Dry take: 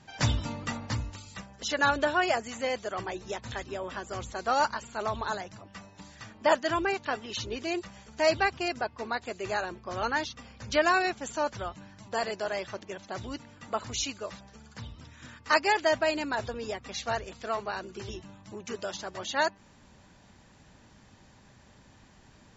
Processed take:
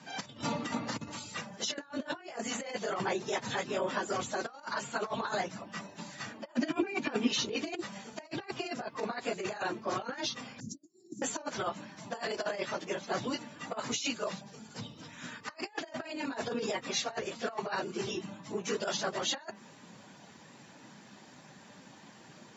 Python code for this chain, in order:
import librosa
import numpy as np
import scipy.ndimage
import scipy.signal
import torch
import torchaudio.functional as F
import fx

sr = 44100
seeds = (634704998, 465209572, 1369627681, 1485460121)

y = fx.phase_scramble(x, sr, seeds[0], window_ms=50)
y = fx.over_compress(y, sr, threshold_db=-35.0, ratio=-0.5)
y = fx.small_body(y, sr, hz=(250.0, 2400.0), ring_ms=25, db=13, at=(6.57, 7.28))
y = fx.ellip_bandstop(y, sr, low_hz=300.0, high_hz=6800.0, order=3, stop_db=50, at=(10.6, 11.22))
y = fx.dynamic_eq(y, sr, hz=1500.0, q=0.86, threshold_db=-58.0, ratio=4.0, max_db=-7, at=(14.32, 15.03))
y = scipy.signal.sosfilt(scipy.signal.butter(4, 150.0, 'highpass', fs=sr, output='sos'), y)